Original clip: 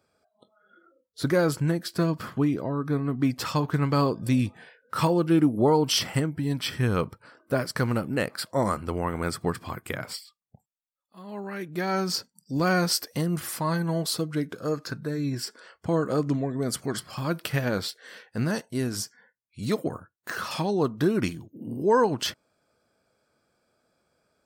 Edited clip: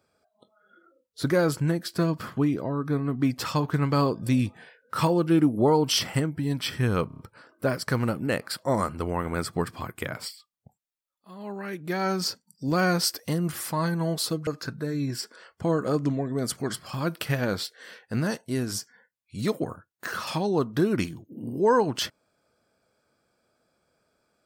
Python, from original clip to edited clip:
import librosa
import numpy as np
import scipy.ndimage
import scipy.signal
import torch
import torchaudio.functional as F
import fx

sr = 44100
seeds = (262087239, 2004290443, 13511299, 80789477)

y = fx.edit(x, sr, fx.stutter(start_s=7.07, slice_s=0.03, count=5),
    fx.cut(start_s=14.35, length_s=0.36), tone=tone)